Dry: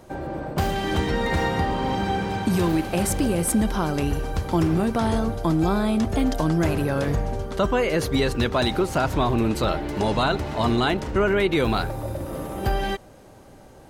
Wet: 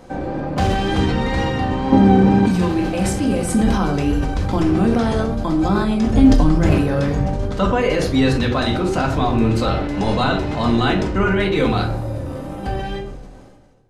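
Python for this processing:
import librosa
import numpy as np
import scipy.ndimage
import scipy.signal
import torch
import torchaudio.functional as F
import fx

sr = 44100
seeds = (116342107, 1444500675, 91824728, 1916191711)

y = fx.fade_out_tail(x, sr, length_s=2.64)
y = scipy.signal.sosfilt(scipy.signal.butter(2, 7800.0, 'lowpass', fs=sr, output='sos'), y)
y = fx.room_shoebox(y, sr, seeds[0], volume_m3=430.0, walls='furnished', distance_m=2.0)
y = fx.wow_flutter(y, sr, seeds[1], rate_hz=2.1, depth_cents=24.0)
y = fx.peak_eq(y, sr, hz=270.0, db=12.0, octaves=3.0, at=(1.92, 2.46))
y = fx.rider(y, sr, range_db=4, speed_s=2.0)
y = fx.low_shelf(y, sr, hz=180.0, db=9.5, at=(6.13, 6.71))
y = fx.sustainer(y, sr, db_per_s=37.0)
y = y * librosa.db_to_amplitude(-1.0)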